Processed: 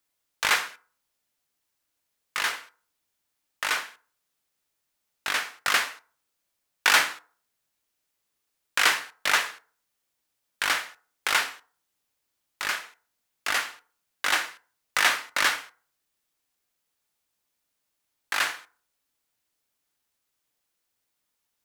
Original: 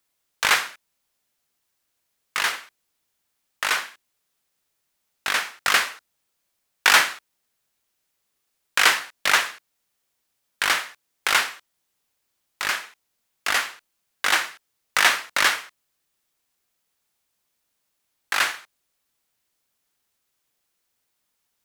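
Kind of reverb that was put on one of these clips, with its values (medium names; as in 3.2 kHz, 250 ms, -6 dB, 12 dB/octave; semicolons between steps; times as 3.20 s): FDN reverb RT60 0.44 s, low-frequency decay 0.8×, high-frequency decay 0.5×, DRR 12 dB; trim -4 dB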